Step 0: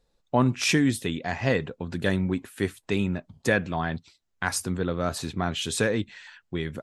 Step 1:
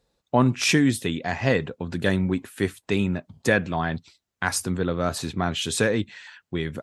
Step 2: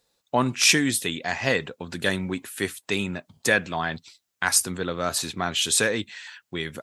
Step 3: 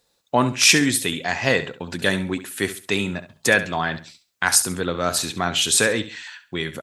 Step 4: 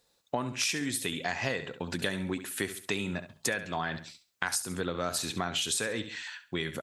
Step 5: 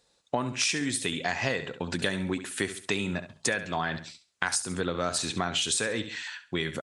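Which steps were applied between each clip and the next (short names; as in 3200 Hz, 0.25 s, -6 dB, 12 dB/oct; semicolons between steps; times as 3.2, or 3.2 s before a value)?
HPF 55 Hz; gain +2.5 dB
tilt +2.5 dB/oct
feedback echo 68 ms, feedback 27%, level -13 dB; gain +3.5 dB
compressor 10:1, threshold -24 dBFS, peak gain reduction 15 dB; gain -3.5 dB
downsampling 22050 Hz; gain +3 dB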